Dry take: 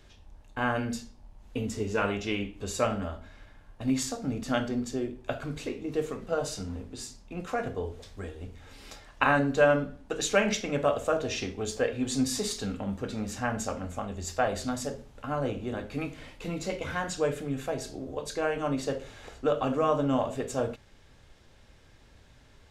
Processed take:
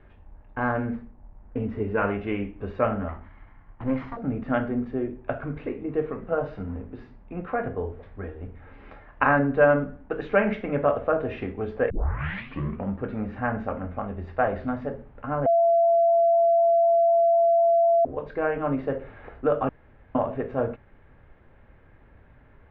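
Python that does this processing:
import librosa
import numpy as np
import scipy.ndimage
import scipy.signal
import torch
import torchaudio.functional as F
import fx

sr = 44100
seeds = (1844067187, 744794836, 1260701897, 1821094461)

y = fx.median_filter(x, sr, points=15, at=(0.6, 1.6))
y = fx.lower_of_two(y, sr, delay_ms=0.98, at=(3.08, 4.17))
y = fx.edit(y, sr, fx.tape_start(start_s=11.9, length_s=0.99),
    fx.bleep(start_s=15.46, length_s=2.59, hz=676.0, db=-19.5),
    fx.room_tone_fill(start_s=19.69, length_s=0.46), tone=tone)
y = scipy.signal.sosfilt(scipy.signal.cheby2(4, 70, 8200.0, 'lowpass', fs=sr, output='sos'), y)
y = y * librosa.db_to_amplitude(3.5)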